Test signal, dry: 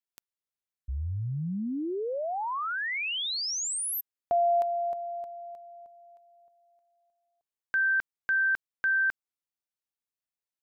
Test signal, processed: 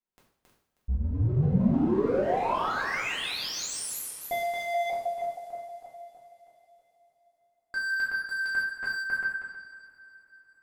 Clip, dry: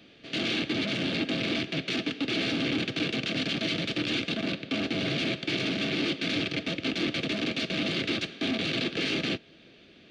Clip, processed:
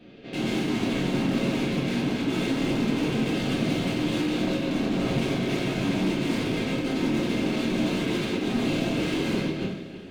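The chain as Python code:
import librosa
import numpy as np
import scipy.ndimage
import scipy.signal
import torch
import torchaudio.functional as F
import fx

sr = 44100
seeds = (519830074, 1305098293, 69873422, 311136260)

y = fx.reverse_delay_fb(x, sr, ms=158, feedback_pct=41, wet_db=-3)
y = fx.high_shelf(y, sr, hz=3000.0, db=-6.0)
y = np.clip(y, -10.0 ** (-32.0 / 20.0), 10.0 ** (-32.0 / 20.0))
y = fx.tilt_shelf(y, sr, db=5.0, hz=970.0)
y = fx.rev_double_slope(y, sr, seeds[0], early_s=0.57, late_s=4.5, knee_db=-22, drr_db=-5.0)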